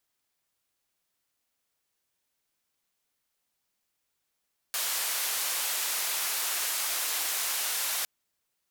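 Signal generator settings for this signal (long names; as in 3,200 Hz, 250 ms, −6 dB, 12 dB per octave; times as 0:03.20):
band-limited noise 690–16,000 Hz, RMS −30.5 dBFS 3.31 s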